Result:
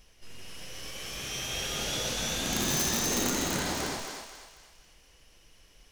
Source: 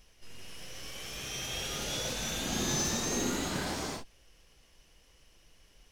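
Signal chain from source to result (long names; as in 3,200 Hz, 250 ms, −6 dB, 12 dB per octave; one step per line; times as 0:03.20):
wrap-around overflow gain 23 dB
feedback echo with a high-pass in the loop 245 ms, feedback 42%, high-pass 530 Hz, level −4 dB
level +2 dB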